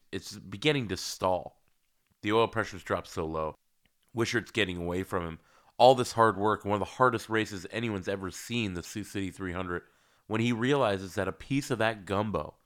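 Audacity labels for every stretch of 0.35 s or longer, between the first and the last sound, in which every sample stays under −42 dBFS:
1.480000	2.230000	silence
3.520000	4.150000	silence
5.360000	5.800000	silence
9.790000	10.300000	silence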